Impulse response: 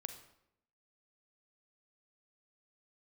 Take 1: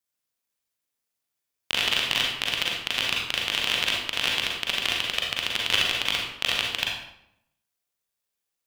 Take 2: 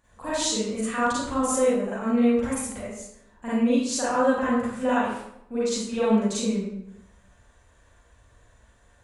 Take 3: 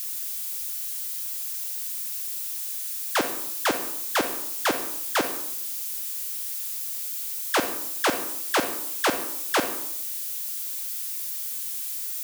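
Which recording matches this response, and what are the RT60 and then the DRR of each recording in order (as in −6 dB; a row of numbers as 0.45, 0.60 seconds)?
3; 0.80, 0.80, 0.80 seconds; −2.0, −10.5, 7.5 decibels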